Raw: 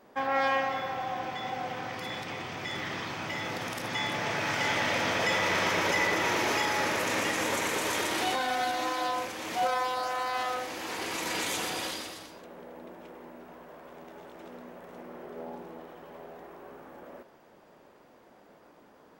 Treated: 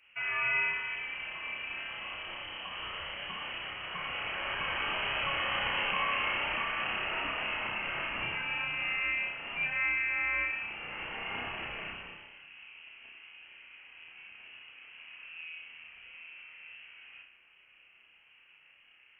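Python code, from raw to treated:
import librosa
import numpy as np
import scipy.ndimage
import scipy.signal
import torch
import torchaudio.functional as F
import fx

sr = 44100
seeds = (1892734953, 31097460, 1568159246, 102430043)

y = fx.low_shelf(x, sr, hz=130.0, db=5.5)
y = fx.room_flutter(y, sr, wall_m=5.4, rt60_s=0.47)
y = fx.freq_invert(y, sr, carrier_hz=3100)
y = y * 10.0 ** (-7.0 / 20.0)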